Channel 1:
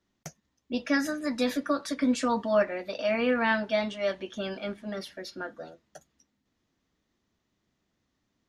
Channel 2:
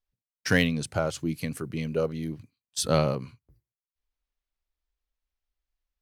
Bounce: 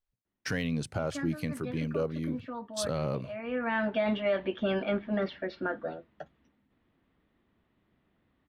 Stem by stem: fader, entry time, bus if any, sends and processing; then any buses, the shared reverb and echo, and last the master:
-3.0 dB, 0.25 s, no send, low-pass 3.3 kHz 24 dB/octave; level rider gain up to 9 dB; auto duck -18 dB, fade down 0.90 s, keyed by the second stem
-1.5 dB, 0.00 s, no send, none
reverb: none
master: treble shelf 3.8 kHz -7.5 dB; peak limiter -20 dBFS, peak gain reduction 10 dB

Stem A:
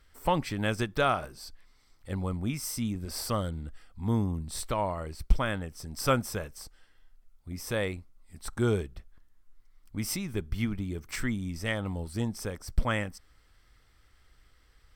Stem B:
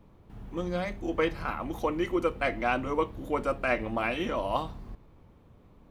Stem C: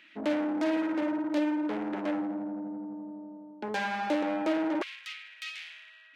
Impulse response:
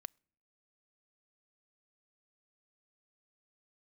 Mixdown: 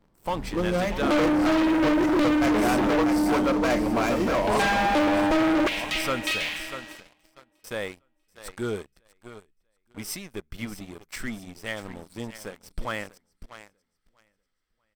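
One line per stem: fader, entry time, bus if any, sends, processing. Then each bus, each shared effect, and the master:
-11.0 dB, 0.00 s, muted 7.07–7.64 s, no send, echo send -12 dB, peaking EQ 66 Hz -12.5 dB 2.4 oct
-2.0 dB, 0.00 s, no send, echo send -7.5 dB, median filter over 15 samples; peaking EQ 86 Hz -9.5 dB 0.82 oct
+2.5 dB, 0.85 s, no send, echo send -21.5 dB, none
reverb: none
echo: feedback delay 642 ms, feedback 36%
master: waveshaping leveller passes 3; saturation -17 dBFS, distortion -19 dB

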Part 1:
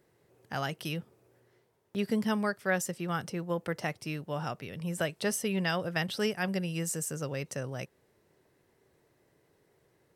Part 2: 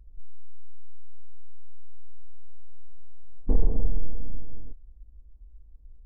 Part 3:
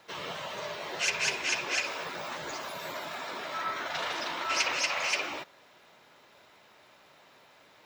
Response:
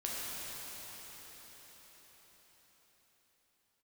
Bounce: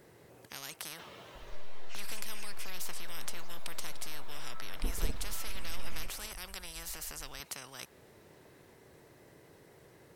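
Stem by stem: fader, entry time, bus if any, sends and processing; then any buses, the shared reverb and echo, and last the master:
-0.5 dB, 0.00 s, no send, spectrum-flattening compressor 10:1
-5.5 dB, 1.35 s, no send, compressor with a negative ratio -20 dBFS, ratio -1
-2.5 dB, 0.90 s, no send, compression 2:1, threshold -41 dBFS, peak gain reduction 10 dB; auto duck -11 dB, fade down 1.60 s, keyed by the first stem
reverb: none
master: none

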